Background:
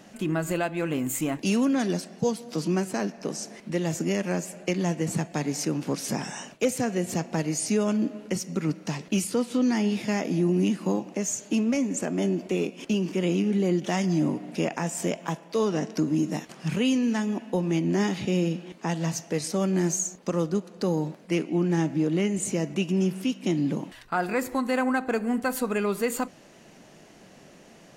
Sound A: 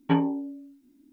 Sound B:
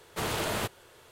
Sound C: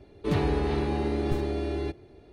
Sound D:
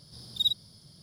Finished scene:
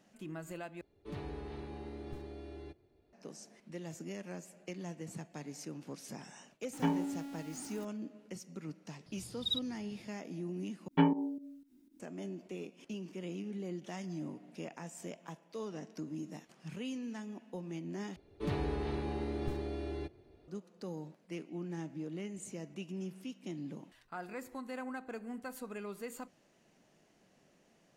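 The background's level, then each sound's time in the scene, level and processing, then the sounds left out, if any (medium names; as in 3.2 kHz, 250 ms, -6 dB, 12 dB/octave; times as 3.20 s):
background -17 dB
0.81 s: replace with C -17.5 dB
6.73 s: add A -9.5 dB + jump at every zero crossing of -34 dBFS
9.06 s: add D -3.5 dB + low-pass 2.5 kHz 6 dB/octave
10.88 s: replace with A -4 dB + volume shaper 120 bpm, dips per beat 2, -14 dB, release 125 ms
18.16 s: replace with C -9.5 dB
not used: B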